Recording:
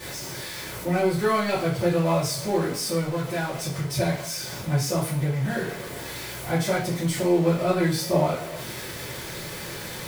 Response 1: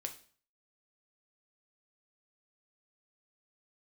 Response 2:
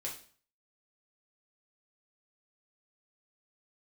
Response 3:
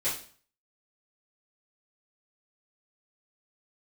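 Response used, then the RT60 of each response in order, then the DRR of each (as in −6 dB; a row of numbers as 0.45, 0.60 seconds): 3; 0.45, 0.45, 0.45 seconds; 4.0, −3.5, −12.5 decibels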